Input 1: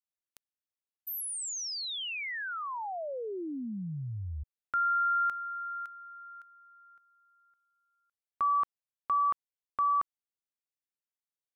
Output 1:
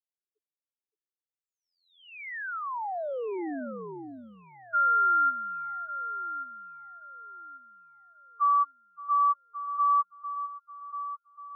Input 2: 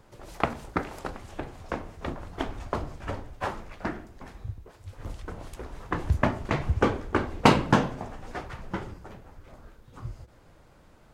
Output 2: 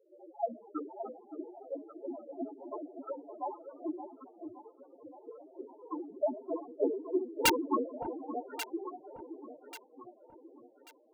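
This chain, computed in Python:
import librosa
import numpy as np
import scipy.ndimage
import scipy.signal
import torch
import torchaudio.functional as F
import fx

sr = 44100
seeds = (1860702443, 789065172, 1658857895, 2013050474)

p1 = fx.env_lowpass(x, sr, base_hz=1100.0, full_db=-23.0)
p2 = scipy.signal.sosfilt(scipy.signal.butter(4, 270.0, 'highpass', fs=sr, output='sos'), p1)
p3 = fx.env_lowpass(p2, sr, base_hz=750.0, full_db=-30.0)
p4 = fx.high_shelf(p3, sr, hz=7500.0, db=-2.5)
p5 = fx.spec_topn(p4, sr, count=2)
p6 = (np.mod(10.0 ** (23.5 / 20.0) * p5 + 1.0, 2.0) - 1.0) / 10.0 ** (23.5 / 20.0)
p7 = p6 + fx.echo_alternate(p6, sr, ms=569, hz=860.0, feedback_pct=59, wet_db=-8.0, dry=0)
y = p7 * 10.0 ** (5.0 / 20.0)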